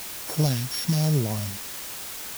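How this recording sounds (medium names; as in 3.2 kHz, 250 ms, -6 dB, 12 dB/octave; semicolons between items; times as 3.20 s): a buzz of ramps at a fixed pitch in blocks of 8 samples; phasing stages 2, 1 Hz, lowest notch 420–2900 Hz; a quantiser's noise floor 6-bit, dither triangular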